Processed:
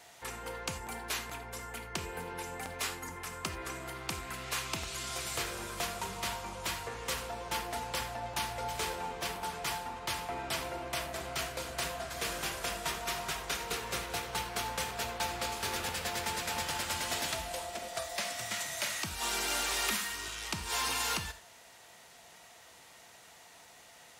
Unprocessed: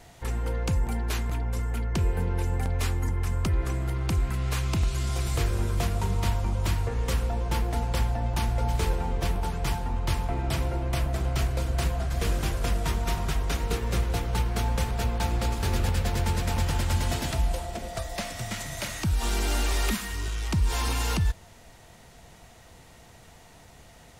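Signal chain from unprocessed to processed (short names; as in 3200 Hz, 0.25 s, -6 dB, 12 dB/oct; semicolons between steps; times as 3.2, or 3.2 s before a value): HPF 960 Hz 6 dB/oct; non-linear reverb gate 0.11 s flat, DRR 8.5 dB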